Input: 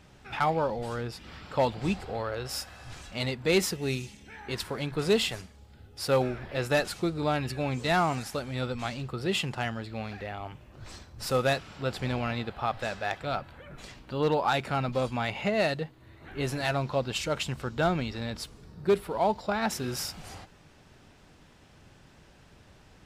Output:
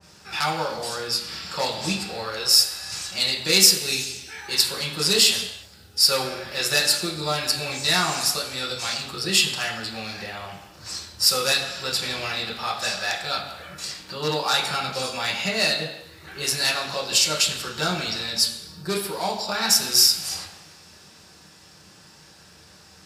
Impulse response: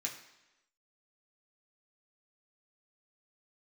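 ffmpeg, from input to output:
-filter_complex "[0:a]highpass=69,bass=f=250:g=-3,treble=f=4000:g=12,asplit=2[s0][s1];[s1]acompressor=threshold=0.0126:ratio=6,volume=1.06[s2];[s0][s2]amix=inputs=2:normalize=0[s3];[1:a]atrim=start_sample=2205,afade=t=out:st=0.3:d=0.01,atrim=end_sample=13671,asetrate=29988,aresample=44100[s4];[s3][s4]afir=irnorm=-1:irlink=0,adynamicequalizer=threshold=0.0126:dfrequency=1800:dqfactor=0.7:tfrequency=1800:tqfactor=0.7:attack=5:release=100:ratio=0.375:range=4:mode=boostabove:tftype=highshelf,volume=0.631"

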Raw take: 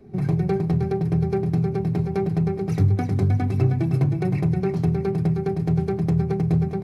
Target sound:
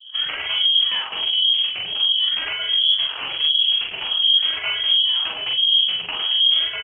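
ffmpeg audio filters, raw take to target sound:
-filter_complex "[0:a]asplit=3[s0][s1][s2];[s0]afade=t=out:st=0.76:d=0.02[s3];[s1]adynamicequalizer=threshold=0.00794:dfrequency=990:dqfactor=1.6:tfrequency=990:tqfactor=1.6:attack=5:release=100:ratio=0.375:range=2:mode=cutabove:tftype=bell,afade=t=in:st=0.76:d=0.02,afade=t=out:st=3.27:d=0.02[s4];[s2]afade=t=in:st=3.27:d=0.02[s5];[s3][s4][s5]amix=inputs=3:normalize=0,acrusher=samples=19:mix=1:aa=0.000001:lfo=1:lforange=19:lforate=0.48,aeval=exprs='0.119*(abs(mod(val(0)/0.119+3,4)-2)-1)':c=same,acrossover=split=430[s6][s7];[s6]aeval=exprs='val(0)*(1-1/2+1/2*cos(2*PI*1.4*n/s))':c=same[s8];[s7]aeval=exprs='val(0)*(1-1/2-1/2*cos(2*PI*1.4*n/s))':c=same[s9];[s8][s9]amix=inputs=2:normalize=0,asplit=2[s10][s11];[s11]adelay=44,volume=0.75[s12];[s10][s12]amix=inputs=2:normalize=0,lowpass=f=2900:t=q:w=0.5098,lowpass=f=2900:t=q:w=0.6013,lowpass=f=2900:t=q:w=0.9,lowpass=f=2900:t=q:w=2.563,afreqshift=-3400,volume=2.11" -ar 48000 -c:a libopus -b:a 20k

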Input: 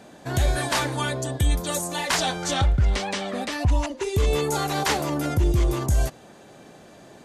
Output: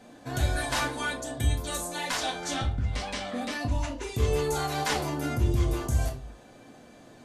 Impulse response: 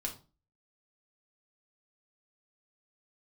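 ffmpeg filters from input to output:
-filter_complex "[0:a]asettb=1/sr,asplit=3[s0][s1][s2];[s0]atrim=end=1.514[s3];[s1]atrim=start=1.51:end=3.71,asetpts=PTS-STARTPTS,afade=t=in:d=0.004:c=qsin,afade=t=out:st=2.196:d=0.004:c=qsin,acompressor=threshold=0.0891:ratio=6[s4];[s2]atrim=start=3.706[s5];[s3][s4]acrossfade=d=0.004:c1=hsin:c2=qsin[s6];[s6][s5]acrossfade=d=0.004:c1=qsin:c2=hsin[s7];[1:a]atrim=start_sample=2205[s8];[s7][s8]afir=irnorm=-1:irlink=0,volume=0.562"

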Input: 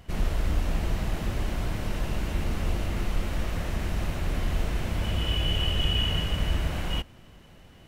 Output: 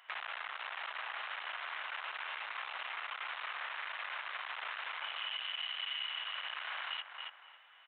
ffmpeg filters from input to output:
-filter_complex "[0:a]aresample=8000,asoftclip=type=hard:threshold=0.0398,aresample=44100,agate=range=0.224:threshold=0.0126:ratio=16:detection=peak,highpass=f=1100:w=0.5412,highpass=f=1100:w=1.3066,asplit=2[s0][s1];[s1]adelay=275,lowpass=f=2200:p=1,volume=0.316,asplit=2[s2][s3];[s3]adelay=275,lowpass=f=2200:p=1,volume=0.16[s4];[s2][s4]amix=inputs=2:normalize=0[s5];[s0][s5]amix=inputs=2:normalize=0,acontrast=87,highshelf=f=2100:g=-9,acompressor=threshold=0.00316:ratio=4,volume=3.16"

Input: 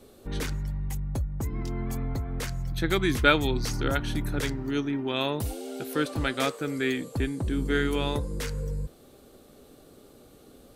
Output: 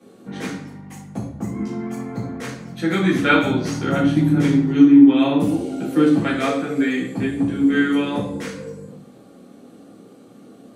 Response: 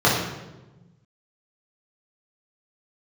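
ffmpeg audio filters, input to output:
-filter_complex "[0:a]asettb=1/sr,asplit=3[s0][s1][s2];[s0]atrim=end=3.914[s3];[s1]atrim=start=3.91:end=6.18,asetpts=PTS-STARTPTS,afade=t=in:d=0.004:c=qsin,afade=t=out:st=2.266:d=0.004:c=qsin,equalizer=f=160:t=o:w=0.33:g=11,equalizer=f=315:t=o:w=0.33:g=12,equalizer=f=1600:t=o:w=0.33:g=-3[s4];[s2]atrim=start=6.176[s5];[s3][s4]acrossfade=d=0.004:c1=hsin:c2=qsin[s6];[s6][s5]acrossfade=d=0.004:c1=qsin:c2=hsin[s7];[1:a]atrim=start_sample=2205,asetrate=70560,aresample=44100[s8];[s7][s8]afir=irnorm=-1:irlink=0,volume=0.211"

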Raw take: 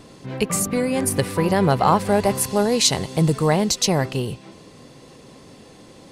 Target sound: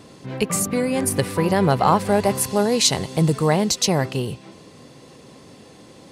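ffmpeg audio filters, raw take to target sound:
-af "highpass=58"

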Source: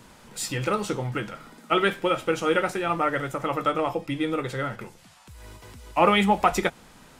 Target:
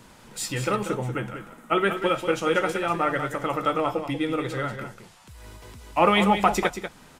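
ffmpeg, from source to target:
-filter_complex "[0:a]asettb=1/sr,asplit=3[s0][s1][s2];[s0]atrim=end=0.764[s3];[s1]atrim=start=0.76:end=1.97,asetpts=PTS-STARTPTS,afade=t=in:d=0.004:c=qsin,afade=t=out:st=1.206:d=0.004:c=qsin,equalizer=f=4600:w=1.4:g=-11[s4];[s2]atrim=start=1.966[s5];[s3][s4]acrossfade=d=0.004:c1=hsin:c2=qsin[s6];[s6][s5]acrossfade=d=0.004:c1=qsin:c2=hsin,aecho=1:1:189:0.355"

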